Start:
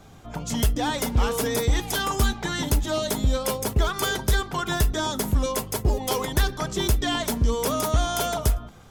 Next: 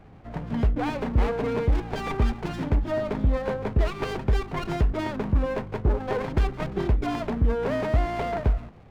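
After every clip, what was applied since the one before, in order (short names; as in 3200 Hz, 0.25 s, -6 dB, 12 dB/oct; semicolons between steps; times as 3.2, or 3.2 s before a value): LPF 2200 Hz 24 dB/oct; running maximum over 17 samples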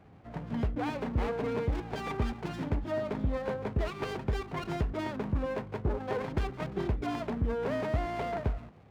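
HPF 65 Hz; gain -5.5 dB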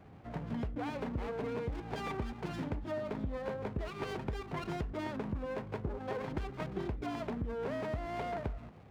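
compressor 4:1, threshold -36 dBFS, peak gain reduction 10.5 dB; wow and flutter 27 cents; gain +1 dB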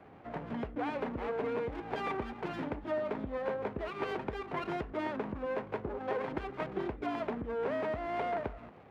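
three-band isolator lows -12 dB, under 250 Hz, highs -13 dB, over 3300 Hz; gain +4.5 dB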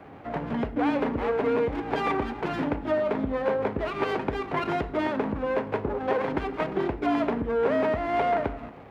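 reverb RT60 0.75 s, pre-delay 4 ms, DRR 12 dB; gain +8.5 dB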